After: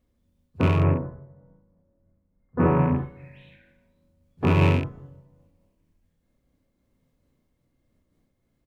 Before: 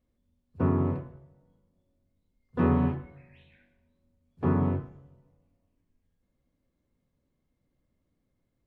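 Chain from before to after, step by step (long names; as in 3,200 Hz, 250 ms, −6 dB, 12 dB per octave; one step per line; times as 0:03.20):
loose part that buzzes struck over −25 dBFS, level −24 dBFS
0:00.76–0:02.96: low-pass filter 1,700 Hz 24 dB per octave
ambience of single reflections 31 ms −6.5 dB, 67 ms −4 dB
amplitude modulation by smooth noise, depth 50%
level +6.5 dB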